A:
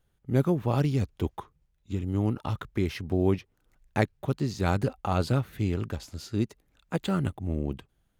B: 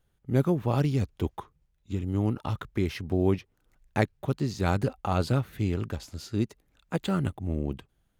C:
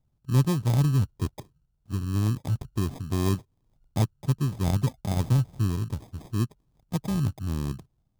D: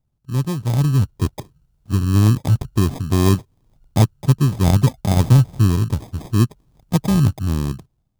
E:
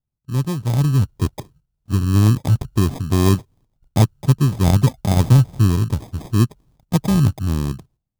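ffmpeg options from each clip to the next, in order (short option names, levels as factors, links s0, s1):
-af anull
-af "acrusher=samples=31:mix=1:aa=0.000001,equalizer=f=125:t=o:w=1:g=8,equalizer=f=500:t=o:w=1:g=-5,equalizer=f=2000:t=o:w=1:g=-9,volume=0.794"
-af "dynaudnorm=f=190:g=9:m=4.47"
-af "agate=range=0.251:threshold=0.00316:ratio=16:detection=peak"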